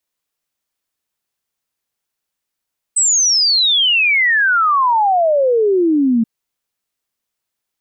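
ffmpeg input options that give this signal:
ffmpeg -f lavfi -i "aevalsrc='0.299*clip(min(t,3.28-t)/0.01,0,1)*sin(2*PI*8200*3.28/log(220/8200)*(exp(log(220/8200)*t/3.28)-1))':duration=3.28:sample_rate=44100" out.wav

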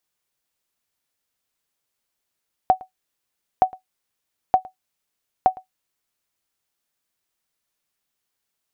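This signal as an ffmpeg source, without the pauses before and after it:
ffmpeg -f lavfi -i "aevalsrc='0.531*(sin(2*PI*749*mod(t,0.92))*exp(-6.91*mod(t,0.92)/0.12)+0.0708*sin(2*PI*749*max(mod(t,0.92)-0.11,0))*exp(-6.91*max(mod(t,0.92)-0.11,0)/0.12))':duration=3.68:sample_rate=44100" out.wav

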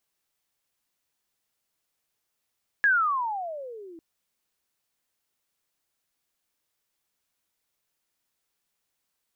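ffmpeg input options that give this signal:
ffmpeg -f lavfi -i "aevalsrc='pow(10,(-16.5-26*t/1.15)/20)*sin(2*PI*1700*1.15/(-29*log(2)/12)*(exp(-29*log(2)/12*t/1.15)-1))':duration=1.15:sample_rate=44100" out.wav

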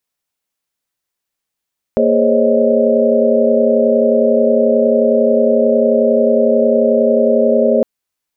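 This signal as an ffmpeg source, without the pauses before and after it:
ffmpeg -f lavfi -i "aevalsrc='0.168*(sin(2*PI*233.08*t)+sin(2*PI*415.3*t)+sin(2*PI*523.25*t)+sin(2*PI*554.37*t)+sin(2*PI*622.25*t))':duration=5.86:sample_rate=44100" out.wav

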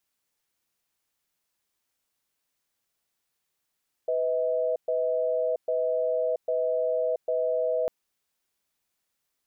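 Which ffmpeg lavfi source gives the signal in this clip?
ffmpeg -f lavfi -i "aevalsrc='0.0501*(sin(2*PI*498*t)+sin(2*PI*638*t))*clip(min(mod(t,0.8),0.68-mod(t,0.8))/0.005,0,1)':duration=3.8:sample_rate=44100" out.wav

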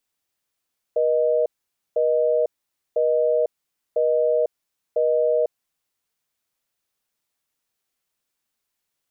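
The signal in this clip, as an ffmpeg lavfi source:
ffmpeg -f lavfi -i "aevalsrc='0.106*(sin(2*PI*480*t)+sin(2*PI*620*t))*clip(min(mod(t,1),0.5-mod(t,1))/0.005,0,1)':duration=4.76:sample_rate=44100" out.wav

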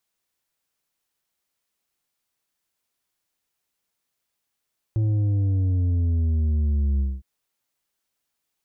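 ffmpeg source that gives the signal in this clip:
ffmpeg -f lavfi -i "aevalsrc='0.106*clip((2.26-t)/0.22,0,1)*tanh(2.11*sin(2*PI*110*2.26/log(65/110)*(exp(log(65/110)*t/2.26)-1)))/tanh(2.11)':duration=2.26:sample_rate=44100" out.wav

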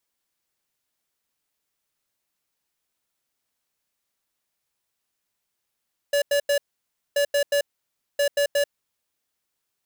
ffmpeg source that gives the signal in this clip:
ffmpeg -f lavfi -i "aevalsrc='0.0944*(2*lt(mod(572*t,1),0.5)-1)*clip(min(mod(mod(t,1.03),0.18),0.09-mod(mod(t,1.03),0.18))/0.005,0,1)*lt(mod(t,1.03),0.54)':duration=3.09:sample_rate=44100" out.wav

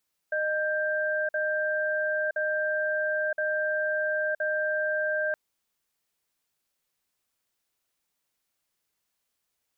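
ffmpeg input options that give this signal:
ffmpeg -f lavfi -i "aevalsrc='0.0422*(sin(2*PI*614*t)+sin(2*PI*1580*t))*clip(min(mod(t,1.02),0.97-mod(t,1.02))/0.005,0,1)':duration=5.02:sample_rate=44100" out.wav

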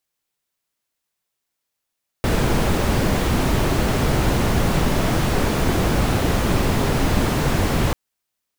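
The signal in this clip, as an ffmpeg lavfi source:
ffmpeg -f lavfi -i "anoisesrc=color=brown:amplitude=0.589:duration=5.69:sample_rate=44100:seed=1" out.wav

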